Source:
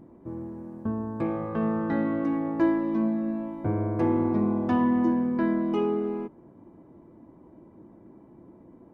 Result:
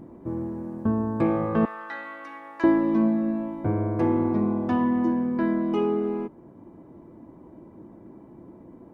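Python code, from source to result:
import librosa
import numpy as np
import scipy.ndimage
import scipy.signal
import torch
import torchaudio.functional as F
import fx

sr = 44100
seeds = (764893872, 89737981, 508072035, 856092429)

y = fx.highpass(x, sr, hz=1400.0, slope=12, at=(1.65, 2.64))
y = fx.rider(y, sr, range_db=4, speed_s=2.0)
y = F.gain(torch.from_numpy(y), 2.0).numpy()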